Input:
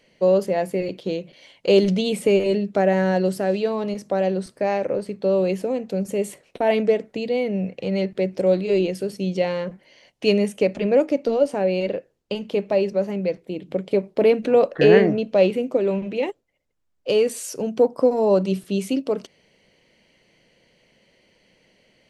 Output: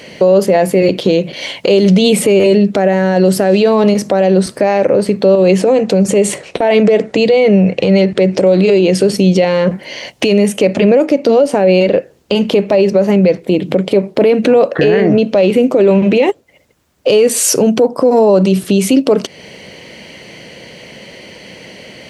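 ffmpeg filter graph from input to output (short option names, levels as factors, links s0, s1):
-filter_complex "[0:a]asettb=1/sr,asplit=3[s0][s1][s2];[s0]atrim=end=5.354[s3];[s1]atrim=start=5.35:end=9.14,asetpts=PTS-STARTPTS,afade=t=in:d=0.004:c=qsin,afade=t=out:st=3.786:d=0.004:c=qsin,lowpass=f=9500:w=0.5412,lowpass=f=9500:w=1.3066,bandreject=f=240:w=6.6,acompressor=threshold=0.0708:ratio=4:attack=3.2:release=140:knee=1:detection=peak[s4];[s2]atrim=start=9.136[s5];[s3][s4]acrossfade=d=0.004:c1=hsin:c2=qsin[s6];[s6][s5]acrossfade=d=0.004:c1=qsin:c2=hsin,highpass=67,acompressor=threshold=0.0141:ratio=2,alimiter=level_in=22.4:limit=0.891:release=50:level=0:latency=1,volume=0.891"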